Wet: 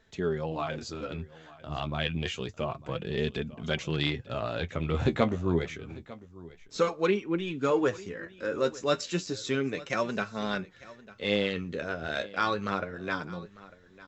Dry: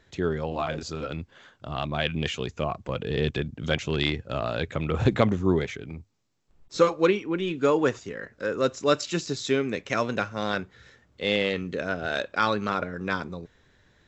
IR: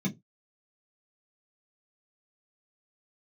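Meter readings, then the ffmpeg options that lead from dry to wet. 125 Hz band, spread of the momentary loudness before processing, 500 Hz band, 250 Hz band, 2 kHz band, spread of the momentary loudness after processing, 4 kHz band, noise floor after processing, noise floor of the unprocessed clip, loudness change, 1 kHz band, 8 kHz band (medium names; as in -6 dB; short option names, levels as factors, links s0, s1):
-3.5 dB, 13 LU, -4.0 dB, -3.5 dB, -4.0 dB, 15 LU, -3.5 dB, -55 dBFS, -63 dBFS, -4.0 dB, -4.0 dB, no reading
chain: -filter_complex "[0:a]flanger=delay=4.5:depth=8.5:regen=34:speed=0.29:shape=sinusoidal,asplit=2[s0][s1];[s1]aecho=0:1:899:0.106[s2];[s0][s2]amix=inputs=2:normalize=0"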